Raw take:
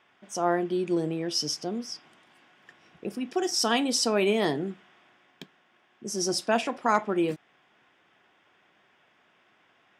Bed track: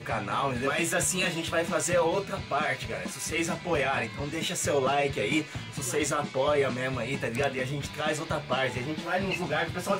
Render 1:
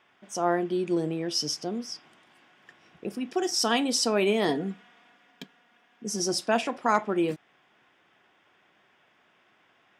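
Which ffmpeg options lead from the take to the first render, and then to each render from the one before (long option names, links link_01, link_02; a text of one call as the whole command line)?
ffmpeg -i in.wav -filter_complex "[0:a]asettb=1/sr,asplit=3[link_01][link_02][link_03];[link_01]atrim=end=4.484[link_04];[link_02]atrim=start=4.48:end=6.2,asetpts=PTS-STARTPTS,afade=type=in:duration=0.004:curve=qsin,afade=type=out:start_time=1.716:duration=0.004:curve=qsin,aecho=1:1:4.2:0.65,atrim=end_sample=75852[link_05];[link_03]atrim=start=6.196[link_06];[link_04][link_05]acrossfade=duration=0.004:curve1=hsin:curve2=qsin[link_07];[link_07][link_06]acrossfade=duration=0.004:curve1=qsin:curve2=hsin" out.wav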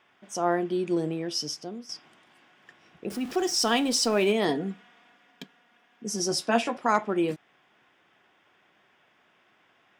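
ffmpeg -i in.wav -filter_complex "[0:a]asettb=1/sr,asplit=3[link_01][link_02][link_03];[link_01]atrim=end=3.104[link_04];[link_02]atrim=start=3.1:end=4.32,asetpts=PTS-STARTPTS,afade=type=in:duration=0.004:curve=qsin,afade=type=out:start_time=1.216:duration=0.004:curve=qsin,aeval=exprs='val(0)+0.5*0.0133*sgn(val(0))':channel_layout=same[link_05];[link_03]atrim=start=4.316[link_06];[link_04][link_05]acrossfade=duration=0.004:curve1=hsin:curve2=qsin[link_07];[link_07][link_06]acrossfade=duration=0.004:curve1=qsin:curve2=hsin,asettb=1/sr,asplit=3[link_08][link_09][link_10];[link_08]atrim=end=6.304[link_11];[link_09]atrim=start=6.3:end=6.77,asetpts=PTS-STARTPTS,afade=type=in:duration=0.004:curve=qsin,afade=type=out:start_time=0.466:duration=0.004:curve=qsin,asplit=2[link_12][link_13];[link_13]adelay=13,volume=-5.5dB[link_14];[link_12][link_14]amix=inputs=2:normalize=0,atrim=end_sample=20727[link_15];[link_10]atrim=start=6.766[link_16];[link_11][link_15]acrossfade=duration=0.004:curve1=hsin:curve2=qsin[link_17];[link_17][link_16]acrossfade=duration=0.004:curve1=qsin:curve2=hsin,asplit=2[link_18][link_19];[link_18]atrim=end=1.89,asetpts=PTS-STARTPTS,afade=type=out:start_time=1.09:duration=0.8:silence=0.375837[link_20];[link_19]atrim=start=1.89,asetpts=PTS-STARTPTS,afade=type=in:duration=0.004:curve=hsin:silence=0.375837[link_21];[link_20][link_21]concat=n=2:v=0:a=1" out.wav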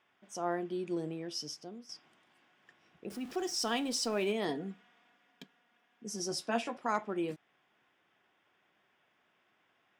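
ffmpeg -i in.wav -af "volume=-9dB" out.wav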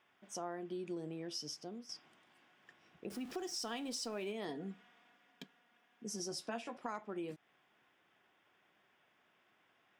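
ffmpeg -i in.wav -af "acompressor=threshold=-40dB:ratio=4" out.wav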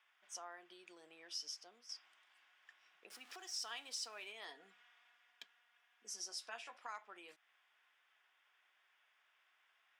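ffmpeg -i in.wav -af "highpass=1200,highshelf=frequency=11000:gain=-7.5" out.wav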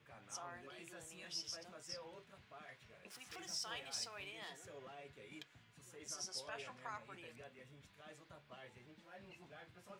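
ffmpeg -i in.wav -i bed.wav -filter_complex "[1:a]volume=-29dB[link_01];[0:a][link_01]amix=inputs=2:normalize=0" out.wav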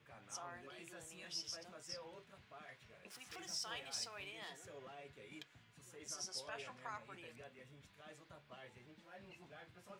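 ffmpeg -i in.wav -af anull out.wav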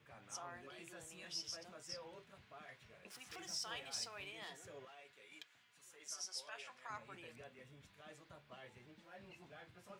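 ffmpeg -i in.wav -filter_complex "[0:a]asettb=1/sr,asplit=3[link_01][link_02][link_03];[link_01]atrim=end=4.854[link_04];[link_02]atrim=start=4.85:end=6.9,asetpts=PTS-STARTPTS,afade=type=in:duration=0.004:curve=qsin,afade=type=out:start_time=2.046:duration=0.004:curve=qsin,highpass=frequency=1100:poles=1[link_05];[link_03]atrim=start=6.896[link_06];[link_04][link_05]acrossfade=duration=0.004:curve1=hsin:curve2=qsin[link_07];[link_07][link_06]acrossfade=duration=0.004:curve1=qsin:curve2=hsin" out.wav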